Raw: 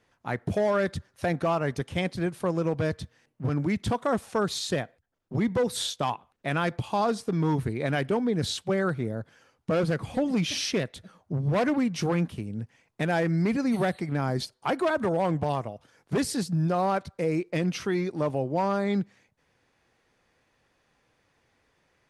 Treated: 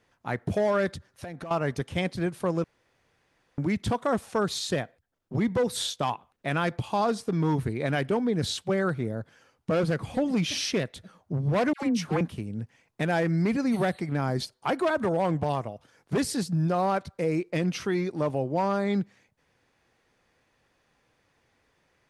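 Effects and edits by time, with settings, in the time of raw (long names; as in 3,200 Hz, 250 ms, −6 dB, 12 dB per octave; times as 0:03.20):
0:00.94–0:01.51: downward compressor 16 to 1, threshold −34 dBFS
0:02.64–0:03.58: fill with room tone
0:11.73–0:12.21: all-pass dispersion lows, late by 96 ms, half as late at 960 Hz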